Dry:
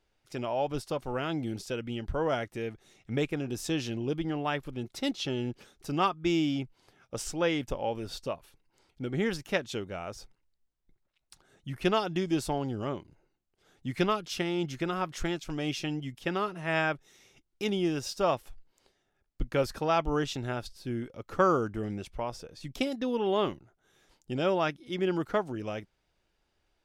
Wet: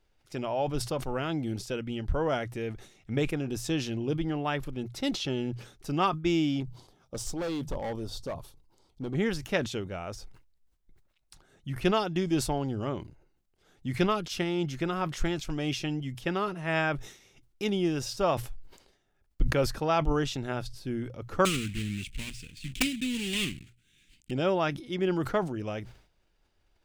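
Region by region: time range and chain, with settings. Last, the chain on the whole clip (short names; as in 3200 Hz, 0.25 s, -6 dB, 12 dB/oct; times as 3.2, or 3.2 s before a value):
6.6–9.15 band shelf 2000 Hz -9.5 dB 1.2 oct + notches 50/100/150 Hz + hard clip -30.5 dBFS
21.45–24.31 block floating point 3-bit + EQ curve 260 Hz 0 dB, 650 Hz -28 dB, 1100 Hz -20 dB, 1600 Hz -7 dB, 2500 Hz +9 dB, 5500 Hz -4 dB, 8100 Hz +4 dB, 13000 Hz -8 dB + wrapped overs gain 13.5 dB
whole clip: low shelf 110 Hz +7.5 dB; notches 60/120 Hz; sustainer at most 110 dB/s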